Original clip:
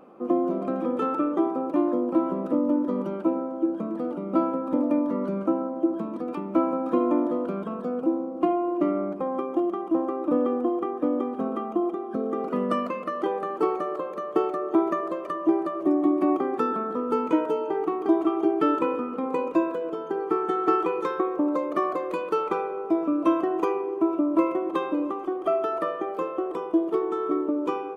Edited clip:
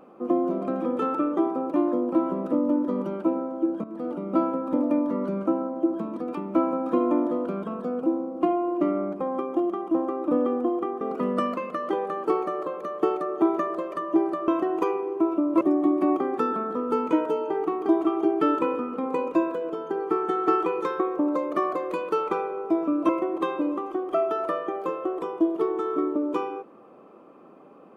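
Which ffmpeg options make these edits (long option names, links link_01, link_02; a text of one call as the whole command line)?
ffmpeg -i in.wav -filter_complex "[0:a]asplit=6[link_01][link_02][link_03][link_04][link_05][link_06];[link_01]atrim=end=3.84,asetpts=PTS-STARTPTS,afade=type=out:start_time=3.836:duration=0.004:curve=hsin:silence=0.237137[link_07];[link_02]atrim=start=3.84:end=11.012,asetpts=PTS-STARTPTS,afade=type=in:duration=0.27:silence=0.237137[link_08];[link_03]atrim=start=12.338:end=15.812[link_09];[link_04]atrim=start=23.288:end=24.422[link_10];[link_05]atrim=start=15.808:end=23.292[link_11];[link_06]atrim=start=24.418[link_12];[link_07][link_08]concat=n=2:v=0:a=1[link_13];[link_13][link_09]acrossfade=duration=0.004:curve1=hsin:curve2=hsin[link_14];[link_14][link_10]acrossfade=duration=0.004:curve1=hsin:curve2=hsin[link_15];[link_15][link_11]acrossfade=duration=0.004:curve1=hsin:curve2=hsin[link_16];[link_16][link_12]acrossfade=duration=0.004:curve1=hsin:curve2=hsin" out.wav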